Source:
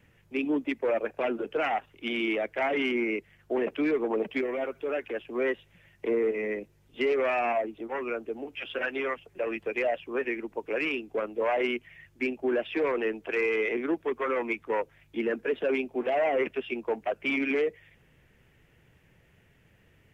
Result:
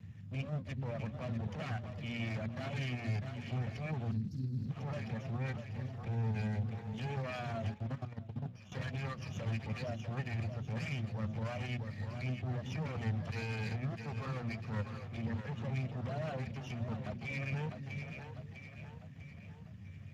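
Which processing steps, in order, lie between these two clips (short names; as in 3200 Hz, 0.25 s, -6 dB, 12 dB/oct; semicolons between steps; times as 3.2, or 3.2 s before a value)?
minimum comb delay 1.7 ms; compressor 5:1, threshold -36 dBFS, peak gain reduction 11.5 dB; resonant low shelf 290 Hz +12 dB, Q 3; 2.29–2.82 expander -35 dBFS; on a send: split-band echo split 400 Hz, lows 0.43 s, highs 0.649 s, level -9 dB; on the sum: limiter -29 dBFS, peak gain reduction 10.5 dB; 4.11–4.71 inverse Chebyshev band-stop 600–2800 Hz, stop band 40 dB; 7.74–8.72 level quantiser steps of 18 dB; bell 97 Hz +8.5 dB 0.42 oct; notches 60/120/180/240/300/360 Hz; gain -1 dB; Speex 15 kbps 32000 Hz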